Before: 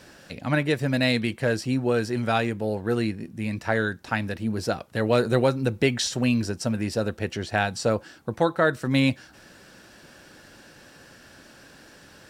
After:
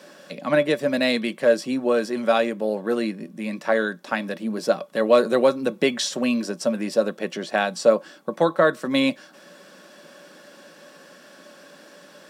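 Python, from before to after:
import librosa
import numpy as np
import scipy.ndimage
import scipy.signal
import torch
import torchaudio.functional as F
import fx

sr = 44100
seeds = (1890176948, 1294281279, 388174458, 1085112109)

y = scipy.signal.sosfilt(scipy.signal.ellip(4, 1.0, 50, 170.0, 'highpass', fs=sr, output='sos'), x)
y = fx.small_body(y, sr, hz=(580.0, 1100.0, 3400.0), ring_ms=85, db=13)
y = y * librosa.db_to_amplitude(1.5)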